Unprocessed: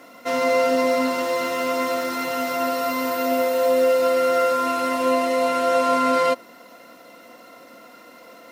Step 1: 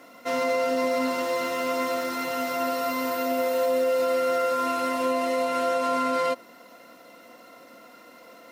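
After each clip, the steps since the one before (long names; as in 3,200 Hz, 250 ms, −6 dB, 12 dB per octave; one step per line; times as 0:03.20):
brickwall limiter −13 dBFS, peak gain reduction 4 dB
level −3.5 dB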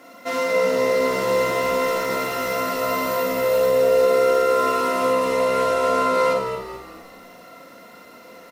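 echo with shifted repeats 214 ms, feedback 45%, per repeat −66 Hz, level −9 dB
four-comb reverb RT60 0.34 s, combs from 33 ms, DRR 2 dB
level +2 dB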